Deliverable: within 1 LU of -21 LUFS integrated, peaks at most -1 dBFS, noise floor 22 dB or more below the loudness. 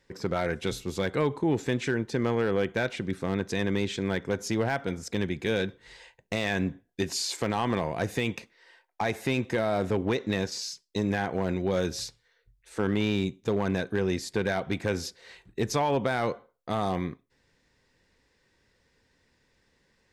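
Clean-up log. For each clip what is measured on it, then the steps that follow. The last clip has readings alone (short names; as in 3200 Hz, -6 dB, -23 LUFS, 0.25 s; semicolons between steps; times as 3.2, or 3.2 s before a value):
clipped 0.4%; flat tops at -17.5 dBFS; loudness -29.5 LUFS; peak -17.5 dBFS; loudness target -21.0 LUFS
-> clip repair -17.5 dBFS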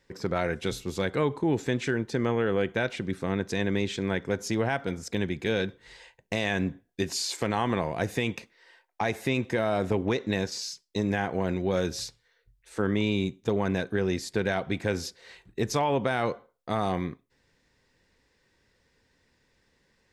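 clipped 0.0%; loudness -29.0 LUFS; peak -11.5 dBFS; loudness target -21.0 LUFS
-> gain +8 dB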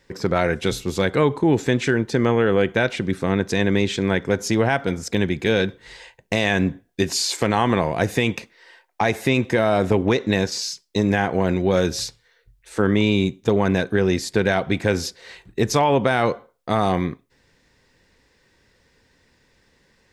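loudness -21.0 LUFS; peak -3.5 dBFS; noise floor -62 dBFS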